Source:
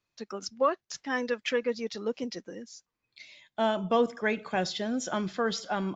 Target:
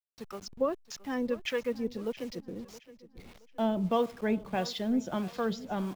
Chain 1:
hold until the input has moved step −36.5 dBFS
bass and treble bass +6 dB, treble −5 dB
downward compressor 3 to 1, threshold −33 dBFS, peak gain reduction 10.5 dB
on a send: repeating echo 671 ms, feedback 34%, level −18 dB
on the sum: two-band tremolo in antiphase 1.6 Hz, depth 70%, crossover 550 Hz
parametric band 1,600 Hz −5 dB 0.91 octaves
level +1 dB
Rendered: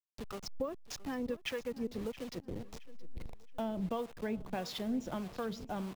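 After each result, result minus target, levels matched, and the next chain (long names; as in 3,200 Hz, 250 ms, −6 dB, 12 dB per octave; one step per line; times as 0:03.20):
downward compressor: peak gain reduction +10.5 dB; hold until the input has moved: distortion +8 dB
hold until the input has moved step −36.5 dBFS
bass and treble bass +6 dB, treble −5 dB
on a send: repeating echo 671 ms, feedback 34%, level −18 dB
on the sum: two-band tremolo in antiphase 1.6 Hz, depth 70%, crossover 550 Hz
parametric band 1,600 Hz −5 dB 0.91 octaves
level +1 dB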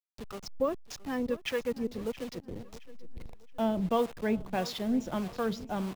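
hold until the input has moved: distortion +8 dB
hold until the input has moved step −43.5 dBFS
bass and treble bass +6 dB, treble −5 dB
on a send: repeating echo 671 ms, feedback 34%, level −18 dB
on the sum: two-band tremolo in antiphase 1.6 Hz, depth 70%, crossover 550 Hz
parametric band 1,600 Hz −5 dB 0.91 octaves
level +1 dB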